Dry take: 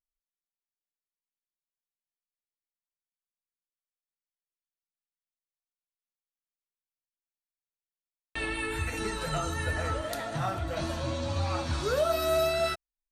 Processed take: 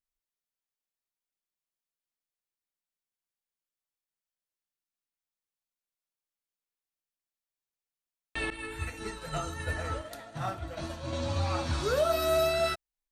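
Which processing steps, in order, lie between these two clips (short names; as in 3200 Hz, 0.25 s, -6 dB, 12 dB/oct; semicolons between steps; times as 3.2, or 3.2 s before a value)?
8.5–11.13 expander -26 dBFS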